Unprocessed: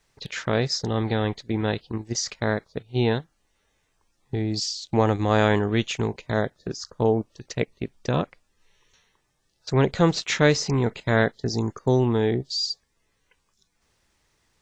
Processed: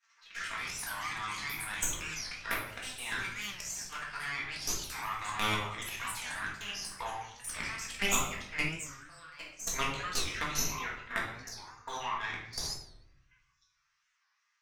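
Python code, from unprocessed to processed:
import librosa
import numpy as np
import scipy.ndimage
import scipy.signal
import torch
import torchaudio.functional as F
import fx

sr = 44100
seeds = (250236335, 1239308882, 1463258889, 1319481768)

p1 = scipy.signal.sosfilt(scipy.signal.cheby1(3, 1.0, [1200.0, 6000.0], 'bandpass', fs=sr, output='sos'), x)
p2 = fx.echo_pitch(p1, sr, ms=195, semitones=5, count=3, db_per_echo=-6.0)
p3 = fx.rider(p2, sr, range_db=4, speed_s=0.5)
p4 = p2 + (p3 * librosa.db_to_amplitude(0.0))
p5 = fx.auto_swell(p4, sr, attack_ms=122.0)
p6 = fx.level_steps(p5, sr, step_db=13)
p7 = fx.env_flanger(p6, sr, rest_ms=9.3, full_db=-31.0)
p8 = fx.cheby_harmonics(p7, sr, harmonics=(6,), levels_db=(-19,), full_scale_db=-15.5)
p9 = fx.peak_eq(p8, sr, hz=4000.0, db=-8.0, octaves=1.2)
p10 = fx.room_shoebox(p9, sr, seeds[0], volume_m3=210.0, walls='mixed', distance_m=1.7)
p11 = fx.record_warp(p10, sr, rpm=45.0, depth_cents=160.0)
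y = p11 * librosa.db_to_amplitude(1.5)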